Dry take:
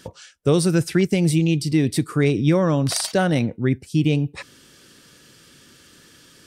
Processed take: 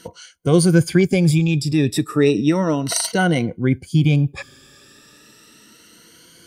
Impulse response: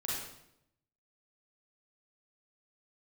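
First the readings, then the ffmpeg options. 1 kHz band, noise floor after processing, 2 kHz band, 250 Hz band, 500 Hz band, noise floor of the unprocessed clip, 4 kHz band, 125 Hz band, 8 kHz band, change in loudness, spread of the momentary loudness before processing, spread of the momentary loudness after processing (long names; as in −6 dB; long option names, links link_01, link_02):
+2.5 dB, −50 dBFS, +3.5 dB, +2.5 dB, +2.0 dB, −51 dBFS, +2.0 dB, +2.5 dB, +3.5 dB, +2.5 dB, 5 LU, 6 LU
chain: -af "afftfilt=real='re*pow(10,14/40*sin(2*PI*(1.9*log(max(b,1)*sr/1024/100)/log(2)-(0.33)*(pts-256)/sr)))':imag='im*pow(10,14/40*sin(2*PI*(1.9*log(max(b,1)*sr/1024/100)/log(2)-(0.33)*(pts-256)/sr)))':win_size=1024:overlap=0.75"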